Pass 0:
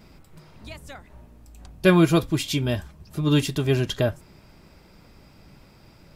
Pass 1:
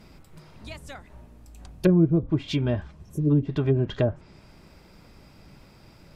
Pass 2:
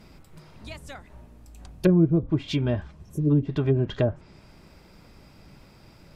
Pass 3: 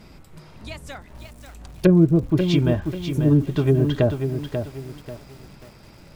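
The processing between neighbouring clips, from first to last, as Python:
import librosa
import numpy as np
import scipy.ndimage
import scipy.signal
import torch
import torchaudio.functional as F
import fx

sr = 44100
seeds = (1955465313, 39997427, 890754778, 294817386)

y1 = fx.env_lowpass_down(x, sr, base_hz=330.0, full_db=-15.0)
y1 = fx.spec_repair(y1, sr, seeds[0], start_s=3.06, length_s=0.22, low_hz=590.0, high_hz=5400.0, source='before')
y2 = y1
y3 = fx.echo_crushed(y2, sr, ms=539, feedback_pct=35, bits=8, wet_db=-7.0)
y3 = y3 * librosa.db_to_amplitude(4.0)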